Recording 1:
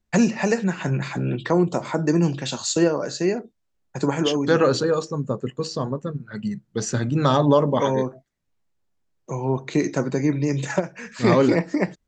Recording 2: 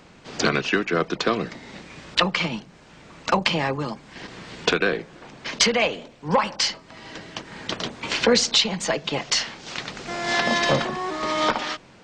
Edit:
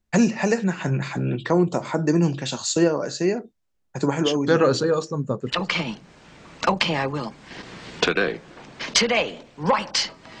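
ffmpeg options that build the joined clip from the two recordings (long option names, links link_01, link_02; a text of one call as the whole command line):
ffmpeg -i cue0.wav -i cue1.wav -filter_complex "[0:a]apad=whole_dur=10.4,atrim=end=10.4,atrim=end=5.69,asetpts=PTS-STARTPTS[link_01];[1:a]atrim=start=2.06:end=7.05,asetpts=PTS-STARTPTS[link_02];[link_01][link_02]acrossfade=duration=0.28:curve1=tri:curve2=tri" out.wav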